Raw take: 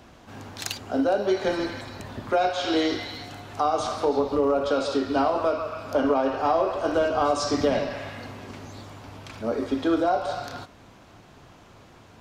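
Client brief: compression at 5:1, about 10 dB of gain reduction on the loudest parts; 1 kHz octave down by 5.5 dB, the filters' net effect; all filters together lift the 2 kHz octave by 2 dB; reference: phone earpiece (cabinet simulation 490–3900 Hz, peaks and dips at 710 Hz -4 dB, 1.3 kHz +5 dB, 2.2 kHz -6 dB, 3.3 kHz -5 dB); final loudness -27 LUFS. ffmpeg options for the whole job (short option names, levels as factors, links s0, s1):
-af "equalizer=f=1000:t=o:g=-9,equalizer=f=2000:t=o:g=7.5,acompressor=threshold=0.0282:ratio=5,highpass=490,equalizer=f=710:t=q:w=4:g=-4,equalizer=f=1300:t=q:w=4:g=5,equalizer=f=2200:t=q:w=4:g=-6,equalizer=f=3300:t=q:w=4:g=-5,lowpass=f=3900:w=0.5412,lowpass=f=3900:w=1.3066,volume=3.98"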